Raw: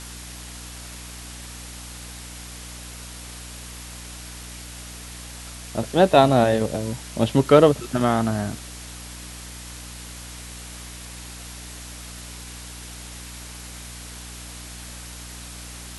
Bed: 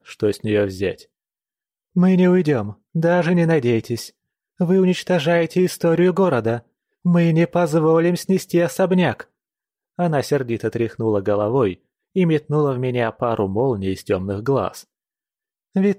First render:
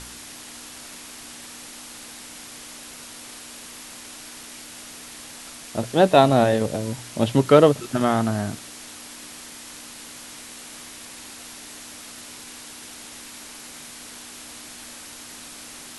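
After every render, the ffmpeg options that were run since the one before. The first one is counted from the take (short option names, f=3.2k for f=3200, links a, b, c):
-af "bandreject=f=60:t=h:w=4,bandreject=f=120:t=h:w=4,bandreject=f=180:t=h:w=4"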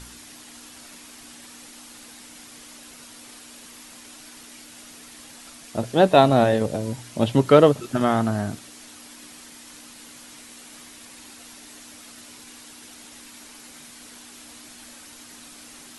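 -af "afftdn=nr=6:nf=-41"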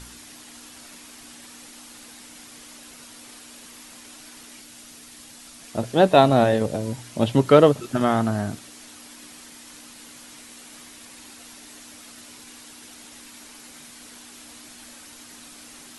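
-filter_complex "[0:a]asettb=1/sr,asplit=3[a][b][c];[a]atrim=end=4.604[d];[b]atrim=start=4.6:end=5.6,asetpts=PTS-STARTPTS,afade=t=in:d=0.004:c=qsin,afade=t=out:st=0.996:d=0.004:c=qsin,acrossover=split=270|3000[e][f][g];[f]acompressor=threshold=-50dB:ratio=6:attack=3.2:release=140:knee=2.83:detection=peak[h];[e][h][g]amix=inputs=3:normalize=0[i];[c]atrim=start=5.596[j];[d][i]acrossfade=d=0.004:c1=hsin:c2=qsin[k];[k][j]acrossfade=d=0.004:c1=qsin:c2=hsin"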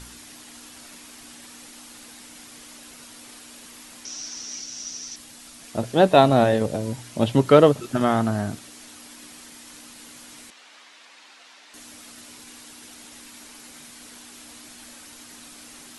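-filter_complex "[0:a]asettb=1/sr,asplit=3[a][b][c];[a]atrim=end=4.054[d];[b]atrim=start=4.05:end=5.16,asetpts=PTS-STARTPTS,afade=t=in:d=0.004:c=qsin,afade=t=out:st=1.106:d=0.004:c=qsin,lowpass=f=5.8k:t=q:w=12[e];[c]atrim=start=5.156[f];[d][e]acrossfade=d=0.004:c1=hsin:c2=qsin[g];[g][f]acrossfade=d=0.004:c1=qsin:c2=hsin,asettb=1/sr,asplit=3[h][i][j];[h]atrim=end=10.504[k];[i]atrim=start=10.5:end=11.74,asetpts=PTS-STARTPTS,afade=t=in:d=0.004:c=qsin,afade=t=out:st=1.236:d=0.004:c=qsin,highpass=660,lowpass=4.2k[l];[j]atrim=start=11.736[m];[k][l]acrossfade=d=0.004:c1=hsin:c2=qsin[n];[n][m]acrossfade=d=0.004:c1=qsin:c2=hsin"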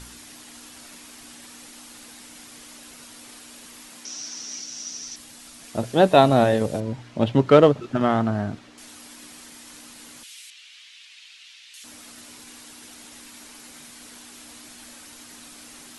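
-filter_complex "[0:a]asettb=1/sr,asplit=3[a][b][c];[a]atrim=end=3.894[d];[b]atrim=start=3.89:end=5.02,asetpts=PTS-STARTPTS,afade=t=in:d=0.004:c=qsin,afade=t=out:st=1.126:d=0.004:c=qsin,highpass=f=110:w=0.5412,highpass=f=110:w=1.3066[e];[c]atrim=start=5.016[f];[d][e]acrossfade=d=0.004:c1=hsin:c2=qsin[g];[g][f]acrossfade=d=0.004:c1=qsin:c2=hsin,asettb=1/sr,asplit=3[h][i][j];[h]atrim=end=6.804[k];[i]atrim=start=6.8:end=8.78,asetpts=PTS-STARTPTS,afade=t=in:d=0.004:c=qsin,afade=t=out:st=1.976:d=0.004:c=qsin,adynamicsmooth=sensitivity=1.5:basefreq=3.6k[l];[j]atrim=start=8.776[m];[k][l]acrossfade=d=0.004:c1=hsin:c2=qsin[n];[n][m]acrossfade=d=0.004:c1=qsin:c2=hsin,asettb=1/sr,asplit=3[o][p][q];[o]atrim=end=10.234[r];[p]atrim=start=10.23:end=11.84,asetpts=PTS-STARTPTS,afade=t=in:d=0.004:c=qsin,afade=t=out:st=1.606:d=0.004:c=qsin,highpass=f=2.8k:t=q:w=1.9[s];[q]atrim=start=11.836[t];[r][s]acrossfade=d=0.004:c1=hsin:c2=qsin[u];[u][t]acrossfade=d=0.004:c1=qsin:c2=hsin"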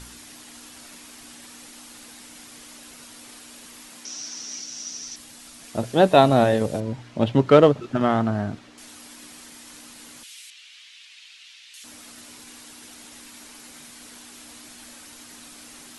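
-af anull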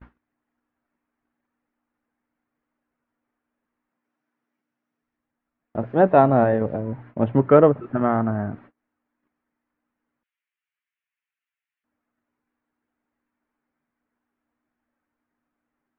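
-af "lowpass=f=1.8k:w=0.5412,lowpass=f=1.8k:w=1.3066,agate=range=-31dB:threshold=-44dB:ratio=16:detection=peak"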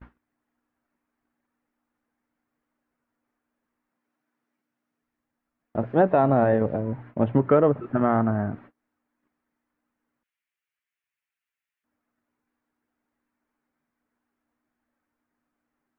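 -af "alimiter=limit=-9dB:level=0:latency=1:release=92"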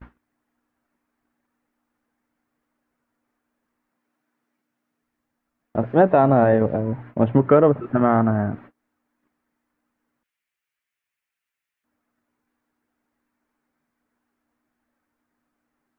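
-af "volume=4dB"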